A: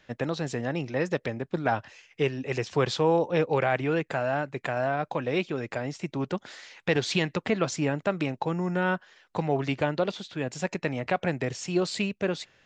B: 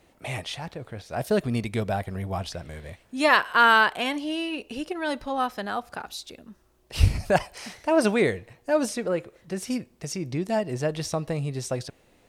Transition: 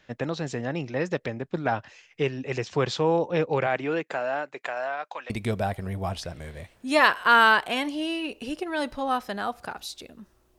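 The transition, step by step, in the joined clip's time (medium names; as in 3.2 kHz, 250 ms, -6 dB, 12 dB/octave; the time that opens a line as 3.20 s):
A
3.66–5.30 s: high-pass 170 Hz -> 1.1 kHz
5.30 s: go over to B from 1.59 s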